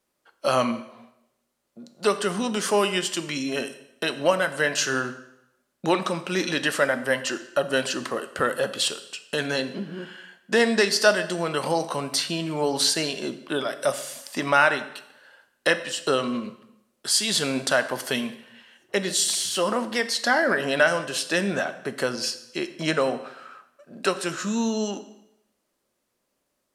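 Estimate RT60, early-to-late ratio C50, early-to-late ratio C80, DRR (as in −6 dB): 0.85 s, 13.5 dB, 15.5 dB, 10.0 dB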